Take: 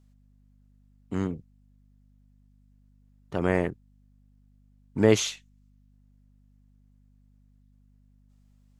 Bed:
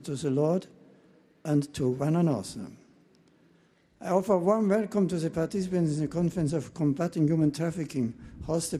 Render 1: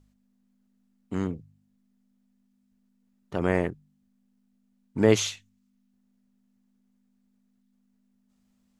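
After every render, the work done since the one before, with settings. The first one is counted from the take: de-hum 50 Hz, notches 3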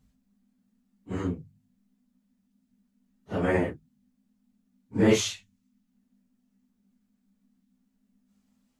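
phase scrambler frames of 0.1 s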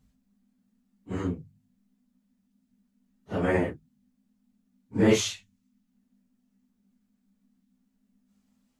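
nothing audible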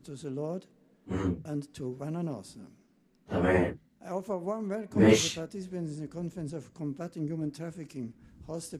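add bed -9.5 dB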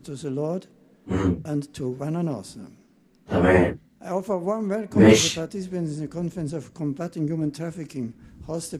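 gain +8 dB; limiter -3 dBFS, peak gain reduction 3 dB

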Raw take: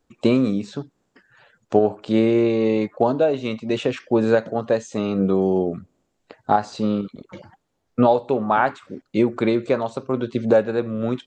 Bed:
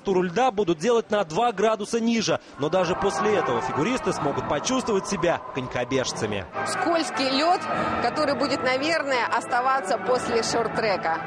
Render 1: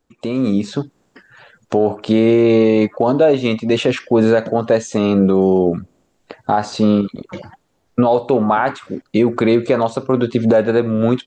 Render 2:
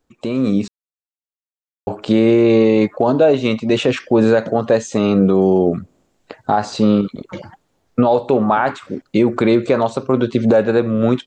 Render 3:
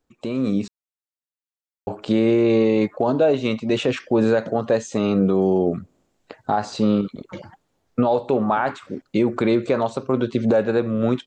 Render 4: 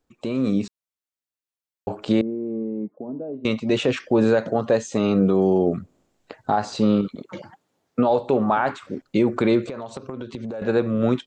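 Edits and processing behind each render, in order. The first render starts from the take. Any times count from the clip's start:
limiter -13.5 dBFS, peak gain reduction 9.5 dB; AGC gain up to 9.5 dB
0.68–1.87 mute
gain -5 dB
2.21–3.45 ladder band-pass 250 Hz, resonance 40%; 7.15–8.1 HPF 140 Hz; 9.67–10.62 compressor 10:1, threshold -28 dBFS

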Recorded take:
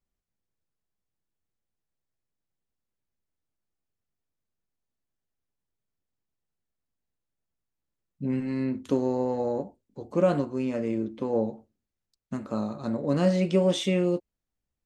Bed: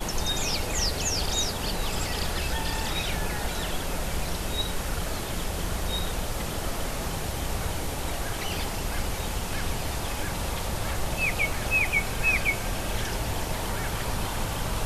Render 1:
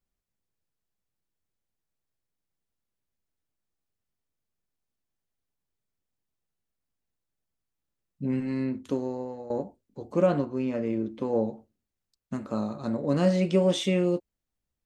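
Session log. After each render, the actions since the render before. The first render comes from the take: 8.54–9.5 fade out, to -15 dB; 10.26–11.05 air absorption 92 m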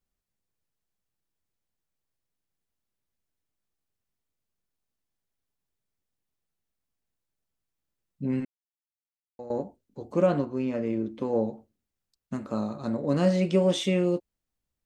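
8.45–9.39 mute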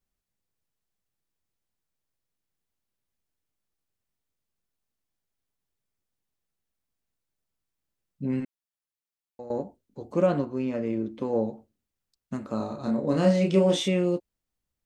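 12.57–13.88 doubler 31 ms -4 dB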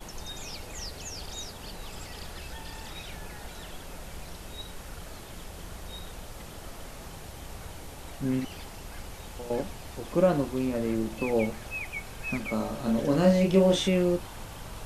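add bed -12 dB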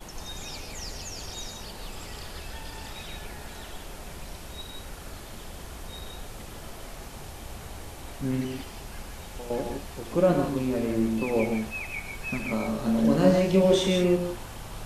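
non-linear reverb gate 0.19 s rising, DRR 3.5 dB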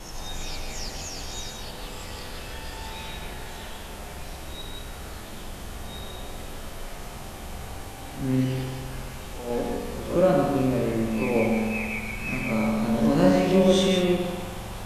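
spectral swells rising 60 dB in 0.40 s; spring tank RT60 1.8 s, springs 46 ms, chirp 55 ms, DRR 2.5 dB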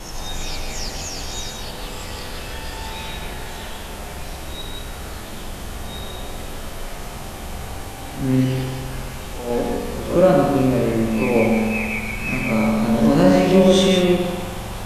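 gain +6 dB; limiter -2 dBFS, peak gain reduction 2.5 dB

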